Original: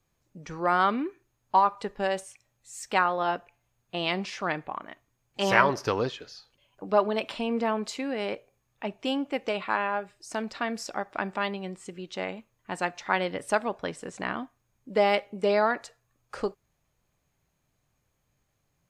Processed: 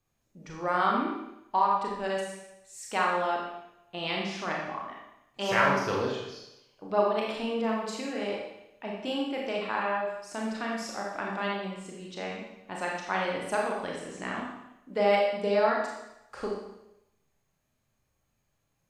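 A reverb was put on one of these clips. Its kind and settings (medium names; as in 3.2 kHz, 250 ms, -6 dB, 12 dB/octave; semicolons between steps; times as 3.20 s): Schroeder reverb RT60 0.87 s, combs from 28 ms, DRR -2.5 dB; trim -6 dB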